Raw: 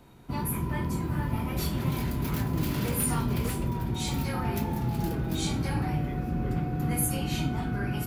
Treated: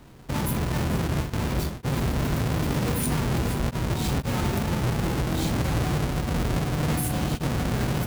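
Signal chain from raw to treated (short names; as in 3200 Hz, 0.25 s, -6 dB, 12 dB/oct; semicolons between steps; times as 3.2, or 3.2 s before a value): half-waves squared off; limiter -20.5 dBFS, peak gain reduction 36 dB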